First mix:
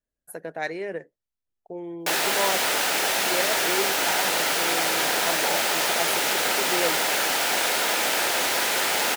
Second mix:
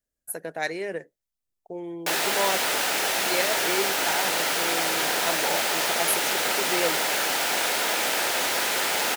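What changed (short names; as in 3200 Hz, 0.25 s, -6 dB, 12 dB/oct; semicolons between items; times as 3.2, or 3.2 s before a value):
speech: add high shelf 4500 Hz +11.5 dB; reverb: off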